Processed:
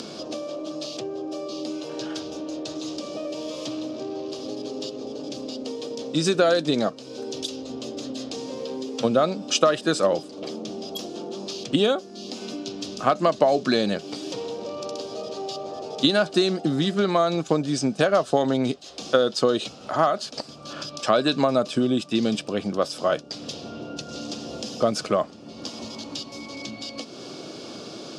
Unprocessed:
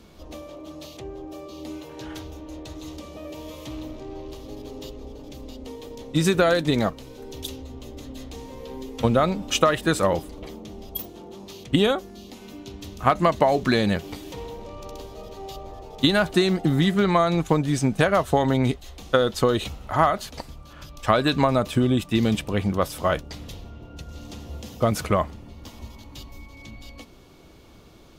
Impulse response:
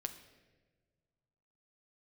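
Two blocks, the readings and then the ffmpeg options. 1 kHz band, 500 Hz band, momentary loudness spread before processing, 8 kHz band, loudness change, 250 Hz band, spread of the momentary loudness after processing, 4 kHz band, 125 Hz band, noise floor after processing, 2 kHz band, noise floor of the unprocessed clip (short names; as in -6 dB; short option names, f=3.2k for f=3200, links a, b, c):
-2.0 dB, +1.5 dB, 20 LU, +2.0 dB, -3.5 dB, -1.0 dB, 14 LU, +2.0 dB, -7.5 dB, -42 dBFS, -3.0 dB, -47 dBFS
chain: -af "highpass=f=160:w=0.5412,highpass=f=160:w=1.3066,equalizer=f=180:t=q:w=4:g=-5,equalizer=f=600:t=q:w=4:g=3,equalizer=f=940:t=q:w=4:g=-7,equalizer=f=2k:t=q:w=4:g=-10,equalizer=f=5k:t=q:w=4:g=9,lowpass=f=8.5k:w=0.5412,lowpass=f=8.5k:w=1.3066,acompressor=mode=upward:threshold=-24dB:ratio=2.5"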